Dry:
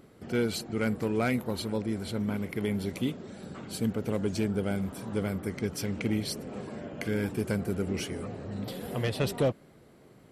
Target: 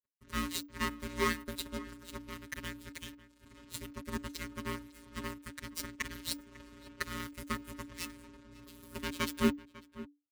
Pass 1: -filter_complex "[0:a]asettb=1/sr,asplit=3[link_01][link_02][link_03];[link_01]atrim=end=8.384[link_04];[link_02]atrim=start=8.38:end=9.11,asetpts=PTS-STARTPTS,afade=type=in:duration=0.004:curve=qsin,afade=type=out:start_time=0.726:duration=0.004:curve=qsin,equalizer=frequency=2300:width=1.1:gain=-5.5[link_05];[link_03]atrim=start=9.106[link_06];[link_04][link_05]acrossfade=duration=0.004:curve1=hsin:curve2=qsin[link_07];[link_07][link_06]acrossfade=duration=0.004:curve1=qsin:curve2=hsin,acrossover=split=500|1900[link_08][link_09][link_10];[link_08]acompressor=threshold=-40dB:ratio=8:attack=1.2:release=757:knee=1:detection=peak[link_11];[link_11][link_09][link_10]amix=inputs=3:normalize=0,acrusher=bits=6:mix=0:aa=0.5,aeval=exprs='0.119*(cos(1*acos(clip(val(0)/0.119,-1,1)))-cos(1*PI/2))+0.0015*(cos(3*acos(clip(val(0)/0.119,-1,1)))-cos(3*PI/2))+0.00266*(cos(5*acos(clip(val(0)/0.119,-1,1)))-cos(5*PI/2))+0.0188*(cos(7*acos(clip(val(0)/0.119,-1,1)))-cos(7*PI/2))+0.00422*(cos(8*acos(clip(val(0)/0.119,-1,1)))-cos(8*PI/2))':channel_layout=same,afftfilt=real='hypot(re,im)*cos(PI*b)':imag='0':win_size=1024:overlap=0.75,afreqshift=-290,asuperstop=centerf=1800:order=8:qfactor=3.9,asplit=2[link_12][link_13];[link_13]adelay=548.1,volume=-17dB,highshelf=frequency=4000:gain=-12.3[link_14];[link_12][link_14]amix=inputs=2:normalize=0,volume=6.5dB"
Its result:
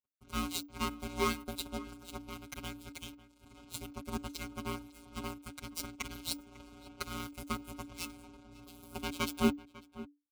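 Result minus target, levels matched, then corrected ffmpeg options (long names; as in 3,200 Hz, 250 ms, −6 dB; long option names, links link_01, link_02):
2,000 Hz band −3.5 dB
-filter_complex "[0:a]asettb=1/sr,asplit=3[link_01][link_02][link_03];[link_01]atrim=end=8.384[link_04];[link_02]atrim=start=8.38:end=9.11,asetpts=PTS-STARTPTS,afade=type=in:duration=0.004:curve=qsin,afade=type=out:start_time=0.726:duration=0.004:curve=qsin,equalizer=frequency=2300:width=1.1:gain=-5.5[link_05];[link_03]atrim=start=9.106[link_06];[link_04][link_05]acrossfade=duration=0.004:curve1=hsin:curve2=qsin[link_07];[link_07][link_06]acrossfade=duration=0.004:curve1=qsin:curve2=hsin,acrossover=split=500|1900[link_08][link_09][link_10];[link_08]acompressor=threshold=-40dB:ratio=8:attack=1.2:release=757:knee=1:detection=peak[link_11];[link_11][link_09][link_10]amix=inputs=3:normalize=0,acrusher=bits=6:mix=0:aa=0.5,aeval=exprs='0.119*(cos(1*acos(clip(val(0)/0.119,-1,1)))-cos(1*PI/2))+0.0015*(cos(3*acos(clip(val(0)/0.119,-1,1)))-cos(3*PI/2))+0.00266*(cos(5*acos(clip(val(0)/0.119,-1,1)))-cos(5*PI/2))+0.0188*(cos(7*acos(clip(val(0)/0.119,-1,1)))-cos(7*PI/2))+0.00422*(cos(8*acos(clip(val(0)/0.119,-1,1)))-cos(8*PI/2))':channel_layout=same,afftfilt=real='hypot(re,im)*cos(PI*b)':imag='0':win_size=1024:overlap=0.75,afreqshift=-290,asuperstop=centerf=790:order=8:qfactor=3.9,asplit=2[link_12][link_13];[link_13]adelay=548.1,volume=-17dB,highshelf=frequency=4000:gain=-12.3[link_14];[link_12][link_14]amix=inputs=2:normalize=0,volume=6.5dB"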